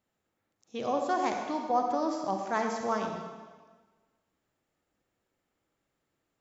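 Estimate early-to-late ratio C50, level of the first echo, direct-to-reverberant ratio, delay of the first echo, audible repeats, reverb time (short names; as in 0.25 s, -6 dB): 3.5 dB, none, 2.5 dB, none, none, 1.4 s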